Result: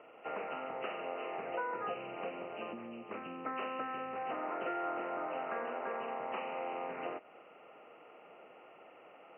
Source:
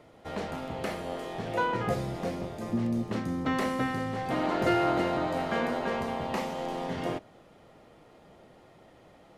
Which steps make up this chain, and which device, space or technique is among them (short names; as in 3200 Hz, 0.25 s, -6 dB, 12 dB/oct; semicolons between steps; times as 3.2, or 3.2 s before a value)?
hearing aid with frequency lowering (nonlinear frequency compression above 1800 Hz 4:1; compressor 4:1, threshold -36 dBFS, peak gain reduction 12.5 dB; speaker cabinet 380–6300 Hz, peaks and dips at 460 Hz +4 dB, 750 Hz +3 dB, 1300 Hz +8 dB, 1900 Hz -7 dB, 2700 Hz +8 dB); gain -1.5 dB